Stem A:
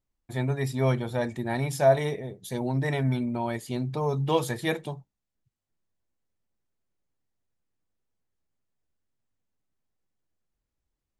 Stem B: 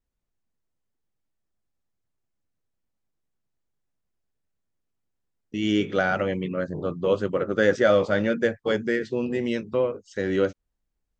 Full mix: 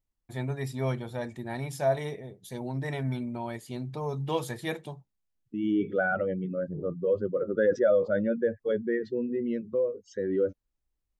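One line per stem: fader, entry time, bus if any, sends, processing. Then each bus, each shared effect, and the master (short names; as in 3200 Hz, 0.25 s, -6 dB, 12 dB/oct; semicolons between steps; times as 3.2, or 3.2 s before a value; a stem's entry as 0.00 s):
-6.5 dB, 0.00 s, no send, vocal rider within 3 dB 2 s
-3.5 dB, 0.00 s, no send, spectral contrast raised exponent 1.8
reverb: off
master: dry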